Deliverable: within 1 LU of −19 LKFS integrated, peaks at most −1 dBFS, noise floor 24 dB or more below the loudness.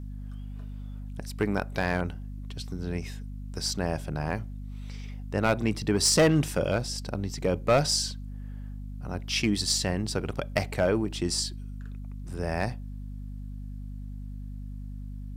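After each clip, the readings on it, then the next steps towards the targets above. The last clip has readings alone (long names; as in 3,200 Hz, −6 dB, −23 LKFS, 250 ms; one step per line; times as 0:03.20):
share of clipped samples 0.3%; peaks flattened at −15.5 dBFS; mains hum 50 Hz; hum harmonics up to 250 Hz; level of the hum −35 dBFS; integrated loudness −28.0 LKFS; sample peak −15.5 dBFS; target loudness −19.0 LKFS
→ clipped peaks rebuilt −15.5 dBFS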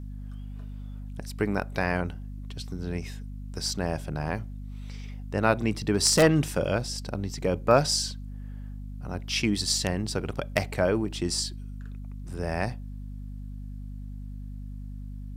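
share of clipped samples 0.0%; mains hum 50 Hz; hum harmonics up to 250 Hz; level of the hum −35 dBFS
→ hum removal 50 Hz, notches 5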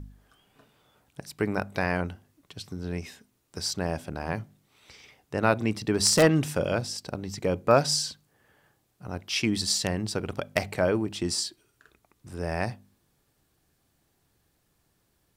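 mains hum none found; integrated loudness −27.5 LKFS; sample peak −6.0 dBFS; target loudness −19.0 LKFS
→ level +8.5 dB
brickwall limiter −1 dBFS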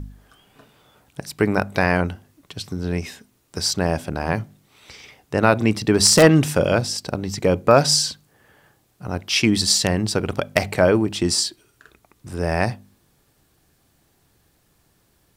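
integrated loudness −19.5 LKFS; sample peak −1.0 dBFS; background noise floor −63 dBFS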